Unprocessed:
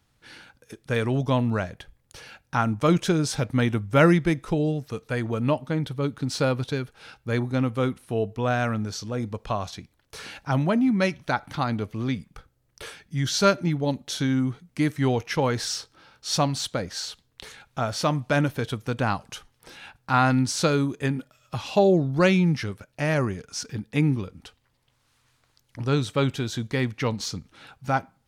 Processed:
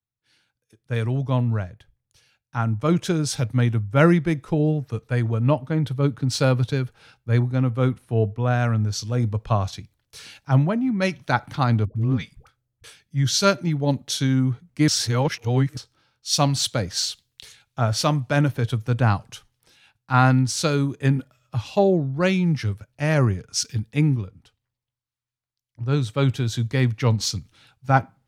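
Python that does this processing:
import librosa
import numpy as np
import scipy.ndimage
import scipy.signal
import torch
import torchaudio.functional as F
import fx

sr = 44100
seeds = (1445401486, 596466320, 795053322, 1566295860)

y = fx.dispersion(x, sr, late='highs', ms=107.0, hz=490.0, at=(11.85, 12.84))
y = fx.edit(y, sr, fx.reverse_span(start_s=14.88, length_s=0.89), tone=tone)
y = fx.peak_eq(y, sr, hz=110.0, db=9.0, octaves=0.89)
y = fx.rider(y, sr, range_db=3, speed_s=0.5)
y = fx.band_widen(y, sr, depth_pct=70)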